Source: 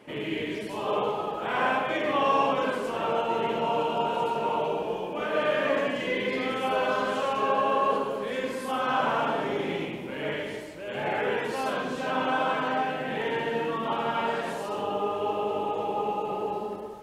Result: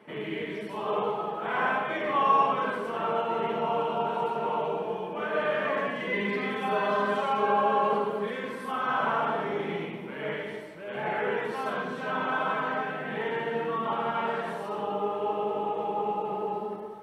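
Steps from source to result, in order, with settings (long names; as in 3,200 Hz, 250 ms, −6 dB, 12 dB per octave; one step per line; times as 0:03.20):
0:06.12–0:08.31: comb filter 5 ms, depth 73%
convolution reverb, pre-delay 3 ms, DRR 10 dB
level −8.5 dB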